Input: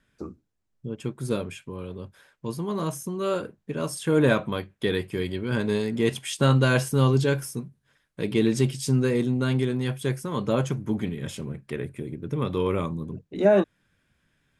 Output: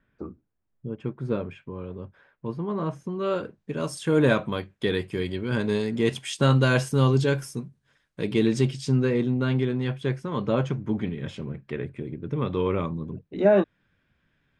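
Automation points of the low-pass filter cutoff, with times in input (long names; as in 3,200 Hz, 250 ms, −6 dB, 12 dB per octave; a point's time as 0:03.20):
0:02.88 2,000 Hz
0:03.25 3,300 Hz
0:03.72 8,000 Hz
0:08.41 8,000 Hz
0:09.16 3,600 Hz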